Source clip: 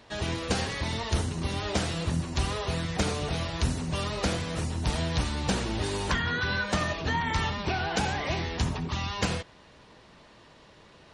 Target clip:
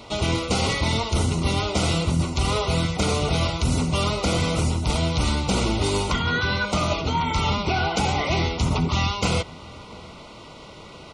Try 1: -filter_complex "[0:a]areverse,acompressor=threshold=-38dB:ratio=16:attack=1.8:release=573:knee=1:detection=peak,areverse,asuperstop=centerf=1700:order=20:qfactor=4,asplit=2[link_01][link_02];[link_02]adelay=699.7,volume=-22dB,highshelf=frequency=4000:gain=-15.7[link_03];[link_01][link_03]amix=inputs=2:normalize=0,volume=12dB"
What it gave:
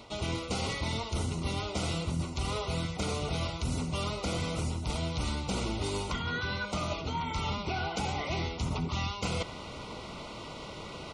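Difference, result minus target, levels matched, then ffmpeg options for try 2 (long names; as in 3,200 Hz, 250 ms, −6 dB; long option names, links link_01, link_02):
downward compressor: peak gain reduction +10.5 dB
-filter_complex "[0:a]areverse,acompressor=threshold=-27dB:ratio=16:attack=1.8:release=573:knee=1:detection=peak,areverse,asuperstop=centerf=1700:order=20:qfactor=4,asplit=2[link_01][link_02];[link_02]adelay=699.7,volume=-22dB,highshelf=frequency=4000:gain=-15.7[link_03];[link_01][link_03]amix=inputs=2:normalize=0,volume=12dB"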